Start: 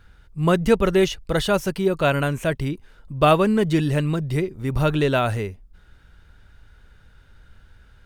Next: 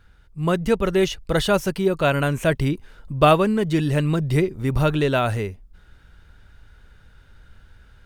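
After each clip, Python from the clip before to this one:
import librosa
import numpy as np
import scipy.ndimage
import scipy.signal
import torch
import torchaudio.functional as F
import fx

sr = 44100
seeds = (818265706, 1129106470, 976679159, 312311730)

y = fx.rider(x, sr, range_db=10, speed_s=0.5)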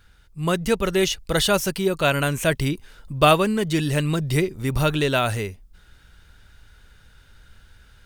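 y = fx.high_shelf(x, sr, hz=2600.0, db=10.5)
y = y * librosa.db_to_amplitude(-2.0)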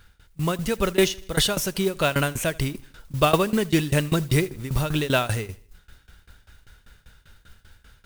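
y = fx.tremolo_shape(x, sr, shape='saw_down', hz=5.1, depth_pct=95)
y = fx.mod_noise(y, sr, seeds[0], snr_db=19)
y = fx.echo_feedback(y, sr, ms=79, feedback_pct=50, wet_db=-23.0)
y = y * librosa.db_to_amplitude(3.5)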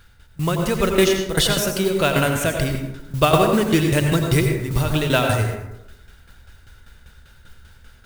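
y = fx.rev_plate(x, sr, seeds[1], rt60_s=0.89, hf_ratio=0.4, predelay_ms=75, drr_db=3.0)
y = y * librosa.db_to_amplitude(2.5)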